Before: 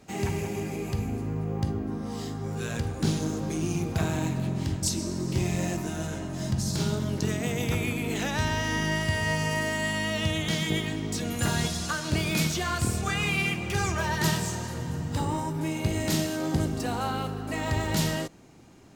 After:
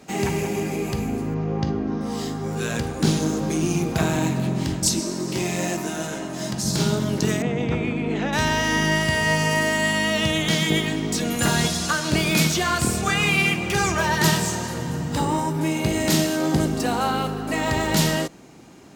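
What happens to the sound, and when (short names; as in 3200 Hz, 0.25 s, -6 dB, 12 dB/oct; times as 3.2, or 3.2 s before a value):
1.34–2.01 steep low-pass 6400 Hz 48 dB/oct
5–6.64 bell 63 Hz -13 dB 2.4 oct
7.42–8.33 tape spacing loss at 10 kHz 28 dB
whole clip: HPF 56 Hz; bell 95 Hz -11.5 dB 0.58 oct; gain +7.5 dB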